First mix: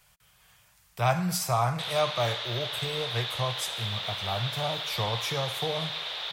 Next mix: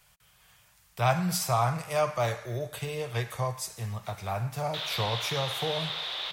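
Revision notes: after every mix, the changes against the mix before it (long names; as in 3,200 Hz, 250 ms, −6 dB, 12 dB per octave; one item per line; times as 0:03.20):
background: entry +2.95 s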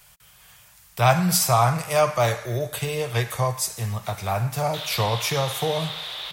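speech +7.0 dB
master: add high-shelf EQ 6,700 Hz +5.5 dB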